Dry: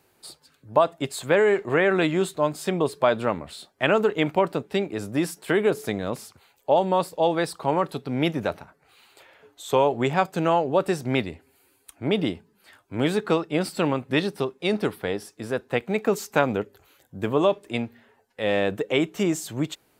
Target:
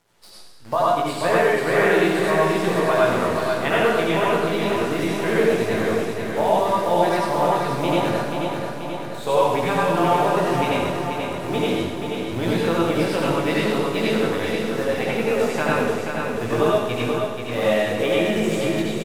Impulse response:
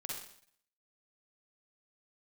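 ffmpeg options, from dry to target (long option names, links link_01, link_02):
-filter_complex "[0:a]aemphasis=mode=reproduction:type=bsi,asetrate=46305,aresample=44100,lowshelf=frequency=460:gain=-10,asplit=2[link_01][link_02];[link_02]acompressor=threshold=-30dB:ratio=6,volume=-1dB[link_03];[link_01][link_03]amix=inputs=2:normalize=0,bandreject=frequency=50:width_type=h:width=6,bandreject=frequency=100:width_type=h:width=6,bandreject=frequency=150:width_type=h:width=6,bandreject=frequency=200:width_type=h:width=6,acrusher=bits=7:dc=4:mix=0:aa=0.000001,flanger=delay=17:depth=4.4:speed=0.72,aecho=1:1:484|968|1452|1936|2420|2904|3388|3872:0.531|0.313|0.185|0.109|0.0643|0.038|0.0224|0.0132[link_04];[1:a]atrim=start_sample=2205,asetrate=26460,aresample=44100[link_05];[link_04][link_05]afir=irnorm=-1:irlink=0,volume=2.5dB"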